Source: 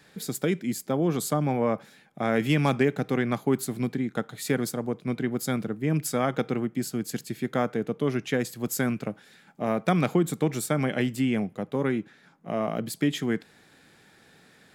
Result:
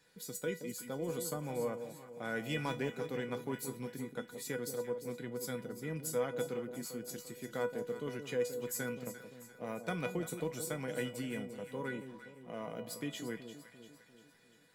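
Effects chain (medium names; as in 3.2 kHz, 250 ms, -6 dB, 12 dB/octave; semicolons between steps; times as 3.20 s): treble shelf 4.9 kHz +4.5 dB; feedback comb 490 Hz, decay 0.21 s, harmonics all, mix 90%; echo whose repeats swap between lows and highs 173 ms, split 830 Hz, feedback 70%, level -8.5 dB; trim +1.5 dB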